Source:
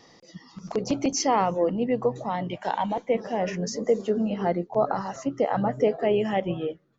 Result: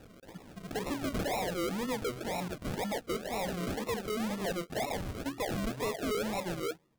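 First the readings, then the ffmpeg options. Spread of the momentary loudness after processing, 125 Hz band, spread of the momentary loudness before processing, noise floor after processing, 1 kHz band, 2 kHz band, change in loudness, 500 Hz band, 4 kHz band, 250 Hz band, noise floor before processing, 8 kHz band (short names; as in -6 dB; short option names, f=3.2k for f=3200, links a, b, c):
5 LU, -6.0 dB, 8 LU, -56 dBFS, -10.5 dB, -2.0 dB, -9.0 dB, -10.5 dB, -2.5 dB, -8.0 dB, -55 dBFS, n/a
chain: -af "bass=f=250:g=-4,treble=f=4k:g=9,acrusher=samples=40:mix=1:aa=0.000001:lfo=1:lforange=24:lforate=2,asoftclip=type=tanh:threshold=-28dB,volume=-2dB"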